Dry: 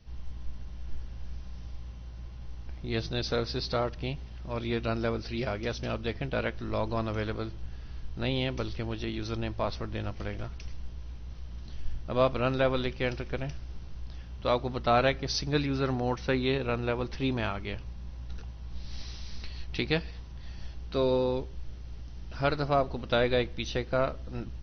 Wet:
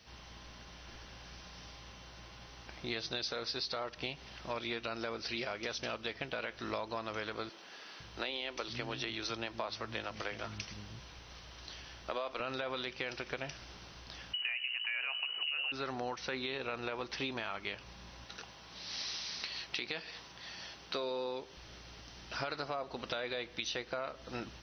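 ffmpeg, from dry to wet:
ffmpeg -i in.wav -filter_complex "[0:a]asettb=1/sr,asplit=3[link_01][link_02][link_03];[link_01]atrim=end=7.494[link_04];[link_02]atrim=start=7.49:end=12.4,asetpts=PTS-STARTPTS,afade=type=in:duration=0.004:curve=qsin,afade=type=out:start_time=4.906:duration=0.004:curve=qsin,acrossover=split=230[link_05][link_06];[link_05]adelay=510[link_07];[link_07][link_06]amix=inputs=2:normalize=0,atrim=end_sample=216531[link_08];[link_03]atrim=start=12.396[link_09];[link_04][link_08]acrossfade=duration=0.004:curve1=hsin:curve2=qsin[link_10];[link_10][link_09]acrossfade=duration=0.004:curve1=qsin:curve2=hsin,asettb=1/sr,asplit=3[link_11][link_12][link_13];[link_11]atrim=end=14.334[link_14];[link_12]atrim=start=14.33:end=15.72,asetpts=PTS-STARTPTS,afade=type=in:duration=0.004:curve=qsin,afade=type=out:start_time=1.386:duration=0.004:curve=qsin,lowpass=frequency=2600:width_type=q:width=0.5098,lowpass=frequency=2600:width_type=q:width=0.6013,lowpass=frequency=2600:width_type=q:width=0.9,lowpass=frequency=2600:width_type=q:width=2.563,afreqshift=-3000[link_15];[link_13]atrim=start=15.716[link_16];[link_14][link_15]acrossfade=duration=0.004:curve1=hsin:curve2=qsin[link_17];[link_17][link_16]acrossfade=duration=0.004:curve1=qsin:curve2=hsin,asettb=1/sr,asplit=3[link_18][link_19][link_20];[link_18]atrim=end=18.244[link_21];[link_19]atrim=start=18.24:end=21.57,asetpts=PTS-STARTPTS,afade=type=in:duration=0.004:curve=qsin,afade=type=out:start_time=3.326:duration=0.004:curve=qsin,highpass=frequency=180:poles=1[link_22];[link_20]atrim=start=21.566[link_23];[link_21][link_22]acrossfade=duration=0.004:curve1=hsin:curve2=qsin[link_24];[link_24][link_23]acrossfade=duration=0.004:curve1=qsin:curve2=hsin,highpass=frequency=990:poles=1,alimiter=level_in=1dB:limit=-24dB:level=0:latency=1:release=31,volume=-1dB,acompressor=threshold=-44dB:ratio=6,volume=9dB" out.wav

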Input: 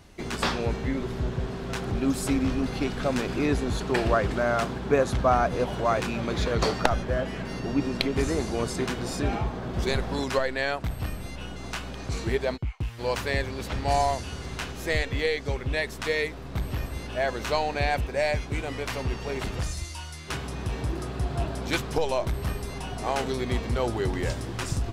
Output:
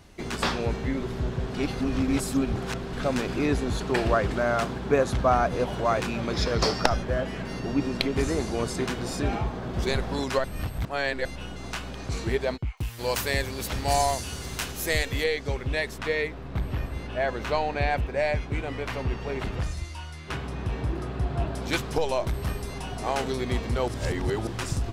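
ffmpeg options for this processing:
ffmpeg -i in.wav -filter_complex "[0:a]asettb=1/sr,asplit=3[link_01][link_02][link_03];[link_01]atrim=end=6.334[link_04];[link_02]atrim=start=6.33:end=6.97,asetpts=PTS-STARTPTS,afade=type=in:duration=0.004:curve=qsin,afade=type=out:start_time=0.636:duration=0.004:curve=qsin,equalizer=frequency=5200:width_type=o:width=0.21:gain=15[link_05];[link_03]atrim=start=6.966[link_06];[link_04][link_05]acrossfade=duration=0.004:curve1=hsin:curve2=qsin[link_07];[link_07][link_06]acrossfade=duration=0.004:curve1=qsin:curve2=hsin,asettb=1/sr,asplit=3[link_08][link_09][link_10];[link_08]atrim=end=12.774[link_11];[link_09]atrim=start=12.77:end=15.24,asetpts=PTS-STARTPTS,afade=type=in:duration=0.004:curve=qsin,afade=type=out:start_time=2.466:duration=0.004:curve=qsin,aemphasis=mode=production:type=50fm[link_12];[link_10]atrim=start=15.236[link_13];[link_11][link_12]acrossfade=duration=0.004:curve1=hsin:curve2=qsin[link_14];[link_14][link_13]acrossfade=duration=0.004:curve1=qsin:curve2=hsin,asettb=1/sr,asplit=3[link_15][link_16][link_17];[link_15]atrim=end=15.984[link_18];[link_16]atrim=start=15.98:end=21.55,asetpts=PTS-STARTPTS,afade=type=in:duration=0.004:curve=qsin,afade=type=out:start_time=5.566:duration=0.004:curve=qsin,bass=frequency=250:gain=1,treble=frequency=4000:gain=-9[link_19];[link_17]atrim=start=21.546[link_20];[link_18][link_19]acrossfade=duration=0.004:curve1=hsin:curve2=qsin[link_21];[link_21][link_20]acrossfade=duration=0.004:curve1=qsin:curve2=hsin,asplit=7[link_22][link_23][link_24][link_25][link_26][link_27][link_28];[link_22]atrim=end=1.542[link_29];[link_23]atrim=start=1.538:end=2.932,asetpts=PTS-STARTPTS,areverse[link_30];[link_24]atrim=start=2.928:end=10.442[link_31];[link_25]atrim=start=10.438:end=11.252,asetpts=PTS-STARTPTS,areverse[link_32];[link_26]atrim=start=11.248:end=23.882[link_33];[link_27]atrim=start=23.878:end=24.472,asetpts=PTS-STARTPTS,areverse[link_34];[link_28]atrim=start=24.468[link_35];[link_29][link_30]acrossfade=duration=0.004:curve1=hsin:curve2=hsin[link_36];[link_36][link_31]acrossfade=duration=0.004:curve1=hsin:curve2=hsin[link_37];[link_37][link_32]acrossfade=duration=0.004:curve1=hsin:curve2=hsin[link_38];[link_38][link_33]acrossfade=duration=0.004:curve1=hsin:curve2=hsin[link_39];[link_39][link_34]acrossfade=duration=0.004:curve1=hsin:curve2=hsin[link_40];[link_40][link_35]acrossfade=duration=0.004:curve1=hsin:curve2=hsin" out.wav

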